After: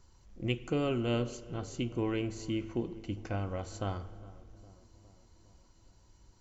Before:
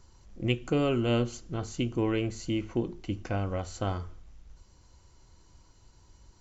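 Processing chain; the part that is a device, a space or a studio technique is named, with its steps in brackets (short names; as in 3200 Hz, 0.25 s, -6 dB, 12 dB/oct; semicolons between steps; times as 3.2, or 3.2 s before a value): dub delay into a spring reverb (darkening echo 0.409 s, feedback 65%, low-pass 1200 Hz, level -19 dB; spring tank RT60 2 s, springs 39 ms, chirp 65 ms, DRR 15.5 dB); gain -4.5 dB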